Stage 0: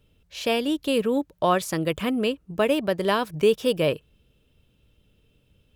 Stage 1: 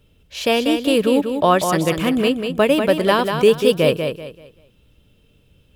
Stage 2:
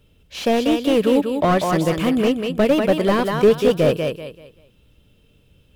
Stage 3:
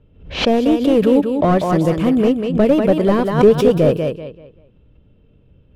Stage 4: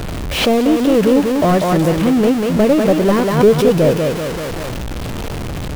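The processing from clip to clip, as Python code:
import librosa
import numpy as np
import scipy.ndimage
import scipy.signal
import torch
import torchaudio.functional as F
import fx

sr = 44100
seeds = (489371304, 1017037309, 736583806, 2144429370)

y1 = fx.echo_feedback(x, sr, ms=192, feedback_pct=29, wet_db=-6.5)
y1 = y1 * 10.0 ** (6.0 / 20.0)
y2 = fx.slew_limit(y1, sr, full_power_hz=160.0)
y3 = fx.env_lowpass(y2, sr, base_hz=2400.0, full_db=-15.5)
y3 = fx.tilt_shelf(y3, sr, db=5.5, hz=1100.0)
y3 = fx.pre_swell(y3, sr, db_per_s=110.0)
y3 = y3 * 10.0 ** (-1.0 / 20.0)
y4 = y3 + 0.5 * 10.0 ** (-16.5 / 20.0) * np.sign(y3)
y4 = y4 * 10.0 ** (-1.0 / 20.0)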